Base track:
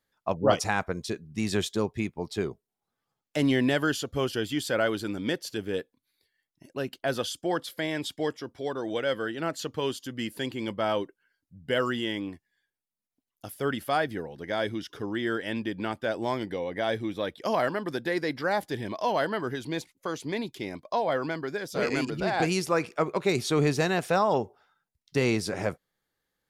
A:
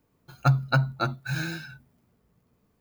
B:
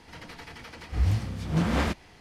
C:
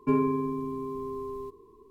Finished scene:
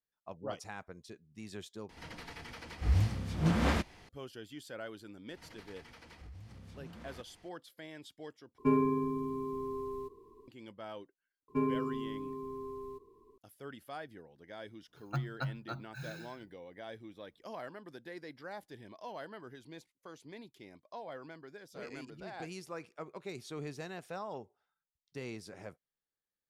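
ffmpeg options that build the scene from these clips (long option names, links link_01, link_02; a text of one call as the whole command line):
ffmpeg -i bed.wav -i cue0.wav -i cue1.wav -i cue2.wav -filter_complex "[2:a]asplit=2[link_01][link_02];[3:a]asplit=2[link_03][link_04];[0:a]volume=-18dB[link_05];[link_02]acompressor=threshold=-37dB:ratio=6:attack=3.2:release=140:knee=1:detection=peak[link_06];[link_05]asplit=3[link_07][link_08][link_09];[link_07]atrim=end=1.894[link_10];[link_01]atrim=end=2.2,asetpts=PTS-STARTPTS,volume=-3.5dB[link_11];[link_08]atrim=start=4.086:end=8.584[link_12];[link_03]atrim=end=1.9,asetpts=PTS-STARTPTS,volume=-3dB[link_13];[link_09]atrim=start=10.476[link_14];[link_06]atrim=end=2.2,asetpts=PTS-STARTPTS,volume=-11dB,afade=type=in:duration=0.004:curve=hsin,afade=type=out:start_time=2.196:duration=0.004:curve=hsin,adelay=233289S[link_15];[link_04]atrim=end=1.9,asetpts=PTS-STARTPTS,volume=-7dB,afade=type=in:duration=0.004:curve=hsin,afade=type=out:start_time=1.896:duration=0.004:curve=hsin,adelay=11480[link_16];[1:a]atrim=end=2.8,asetpts=PTS-STARTPTS,volume=-15dB,afade=type=in:duration=0.004:curve=hsin,afade=type=out:start_time=2.796:duration=0.004:curve=hsin,adelay=14680[link_17];[link_10][link_11]acrossfade=duration=0.004:curve1=hsin:curve2=hsin[link_18];[link_18][link_12]acrossfade=duration=0.004:curve1=hsin:curve2=hsin[link_19];[link_19][link_13]acrossfade=duration=0.004:curve1=hsin:curve2=hsin[link_20];[link_20][link_14]acrossfade=duration=0.004:curve1=hsin:curve2=hsin[link_21];[link_21][link_15][link_16][link_17]amix=inputs=4:normalize=0" out.wav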